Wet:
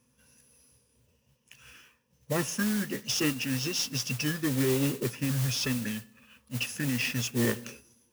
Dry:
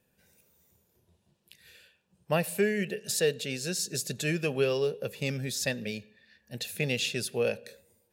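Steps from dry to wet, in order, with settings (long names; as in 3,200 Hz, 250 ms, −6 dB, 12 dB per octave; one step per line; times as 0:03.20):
EQ curve with evenly spaced ripples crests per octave 1, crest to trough 15 dB
brickwall limiter −19 dBFS, peak gain reduction 8 dB
formants moved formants −6 semitones
noise that follows the level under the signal 10 dB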